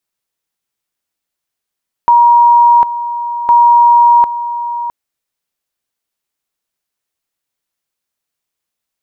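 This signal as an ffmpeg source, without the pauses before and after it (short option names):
-f lavfi -i "aevalsrc='pow(10,(-3.5-12.5*gte(mod(t,1.41),0.75))/20)*sin(2*PI*950*t)':d=2.82:s=44100"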